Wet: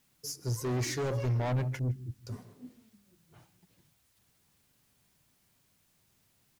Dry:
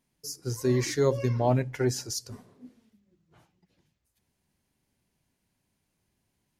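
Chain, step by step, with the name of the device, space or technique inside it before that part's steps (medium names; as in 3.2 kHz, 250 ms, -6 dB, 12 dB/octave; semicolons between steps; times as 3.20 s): 1.79–2.27 s: inverse Chebyshev low-pass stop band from 670 Hz, stop band 50 dB; delay 155 ms -21.5 dB; open-reel tape (saturation -30 dBFS, distortion -6 dB; peaking EQ 120 Hz +5 dB; white noise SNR 35 dB)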